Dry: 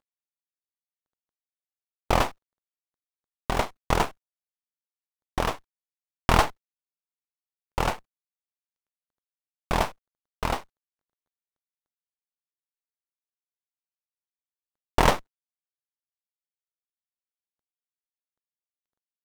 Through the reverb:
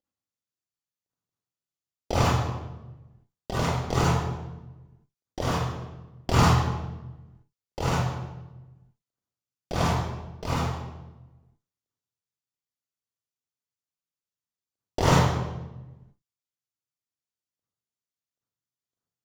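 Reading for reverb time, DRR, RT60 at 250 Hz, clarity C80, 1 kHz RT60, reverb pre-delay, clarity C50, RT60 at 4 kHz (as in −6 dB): 1.1 s, −8.5 dB, 1.5 s, 0.5 dB, 0.95 s, 33 ms, −5.5 dB, 0.80 s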